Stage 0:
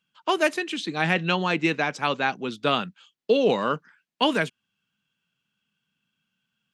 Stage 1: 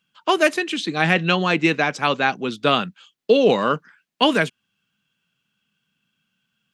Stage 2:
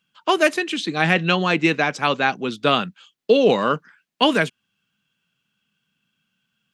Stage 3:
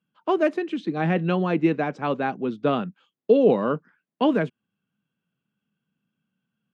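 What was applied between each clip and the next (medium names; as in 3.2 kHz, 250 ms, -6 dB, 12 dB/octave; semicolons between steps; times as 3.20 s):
band-stop 910 Hz, Q 18; trim +5 dB
no audible change
band-pass filter 260 Hz, Q 0.55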